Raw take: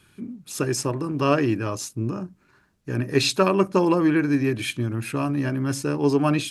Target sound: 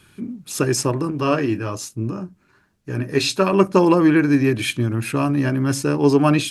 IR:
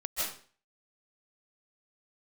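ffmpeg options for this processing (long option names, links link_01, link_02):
-filter_complex "[0:a]asettb=1/sr,asplit=3[link_01][link_02][link_03];[link_01]atrim=end=1.104[link_04];[link_02]atrim=start=1.1:end=3.53,asetpts=PTS-STARTPTS,afade=type=in:duration=0.004:curve=qsin,afade=type=out:start_time=2.426:duration=0.004:curve=qsin,flanger=delay=9:depth=3:regen=-52:speed=1.2:shape=sinusoidal[link_05];[link_03]atrim=start=3.526[link_06];[link_04][link_05]acrossfade=duration=0.004:curve1=hsin:curve2=qsin[link_07];[link_07][link_06]acrossfade=duration=0.004:curve1=qsin:curve2=hsin,volume=5dB"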